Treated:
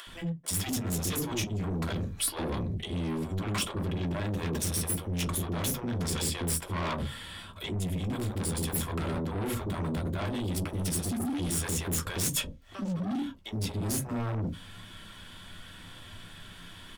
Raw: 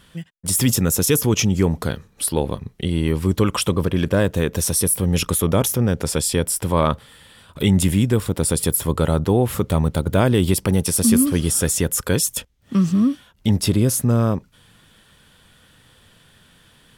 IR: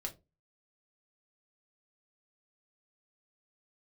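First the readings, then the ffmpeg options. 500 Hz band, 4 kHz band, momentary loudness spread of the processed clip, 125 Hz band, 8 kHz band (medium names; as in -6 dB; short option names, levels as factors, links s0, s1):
-15.5 dB, -8.5 dB, 17 LU, -12.0 dB, -12.0 dB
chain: -filter_complex "[0:a]highshelf=f=4000:g=-9.5[s0];[1:a]atrim=start_sample=2205,asetrate=74970,aresample=44100[s1];[s0][s1]afir=irnorm=-1:irlink=0,areverse,acompressor=threshold=0.0316:ratio=16,areverse,asoftclip=type=tanh:threshold=0.02,acrossover=split=490[s2][s3];[s2]adelay=70[s4];[s4][s3]amix=inputs=2:normalize=0,asplit=2[s5][s6];[s6]aeval=exprs='0.0473*sin(PI/2*2.82*val(0)/0.0473)':c=same,volume=0.708[s7];[s5][s7]amix=inputs=2:normalize=0,tiltshelf=f=1300:g=-3,acompressor=mode=upward:threshold=0.00631:ratio=2.5"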